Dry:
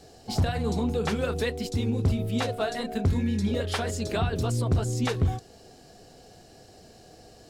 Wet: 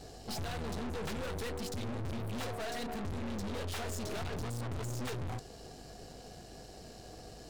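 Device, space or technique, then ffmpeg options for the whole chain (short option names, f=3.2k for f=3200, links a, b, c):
valve amplifier with mains hum: -af "aeval=exprs='(tanh(112*val(0)+0.6)-tanh(0.6))/112':c=same,aeval=exprs='val(0)+0.00112*(sin(2*PI*50*n/s)+sin(2*PI*2*50*n/s)/2+sin(2*PI*3*50*n/s)/3+sin(2*PI*4*50*n/s)/4+sin(2*PI*5*50*n/s)/5)':c=same,volume=3.5dB"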